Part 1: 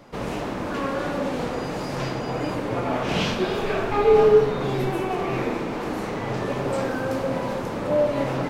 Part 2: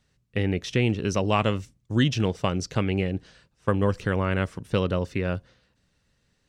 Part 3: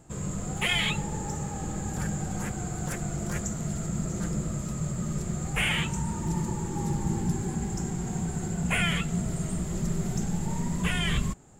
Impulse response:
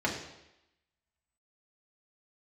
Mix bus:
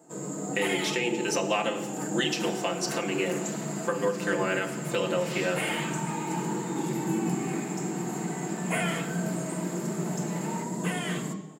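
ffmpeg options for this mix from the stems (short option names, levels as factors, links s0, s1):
-filter_complex "[0:a]highpass=f=840:w=0.5412,highpass=f=840:w=1.3066,aemphasis=mode=production:type=50fm,adelay=2150,volume=0.158,asplit=2[s0][s1];[s1]volume=0.447[s2];[1:a]aemphasis=mode=production:type=bsi,aecho=1:1:5.8:0.97,adelay=200,volume=0.562,asplit=2[s3][s4];[s4]volume=0.376[s5];[2:a]equalizer=f=2400:t=o:w=1.6:g=-11.5,aecho=1:1:6.5:0.37,volume=0.794,asplit=2[s6][s7];[s7]volume=0.531[s8];[3:a]atrim=start_sample=2205[s9];[s2][s5][s8]amix=inputs=3:normalize=0[s10];[s10][s9]afir=irnorm=-1:irlink=0[s11];[s0][s3][s6][s11]amix=inputs=4:normalize=0,highpass=f=220:w=0.5412,highpass=f=220:w=1.3066,alimiter=limit=0.158:level=0:latency=1:release=362"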